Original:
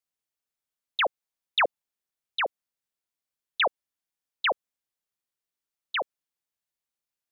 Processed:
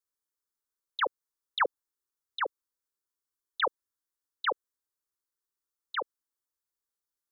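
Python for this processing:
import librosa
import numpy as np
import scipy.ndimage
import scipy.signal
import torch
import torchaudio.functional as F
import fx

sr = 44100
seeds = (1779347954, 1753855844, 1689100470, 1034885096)

y = fx.fixed_phaser(x, sr, hz=680.0, stages=6)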